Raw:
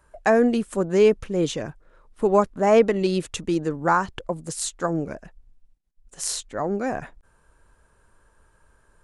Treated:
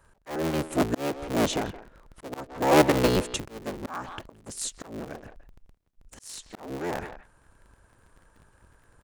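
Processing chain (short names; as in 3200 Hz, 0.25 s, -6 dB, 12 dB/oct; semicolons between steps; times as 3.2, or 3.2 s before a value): cycle switcher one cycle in 3, inverted; speakerphone echo 0.17 s, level -14 dB; auto swell 0.556 s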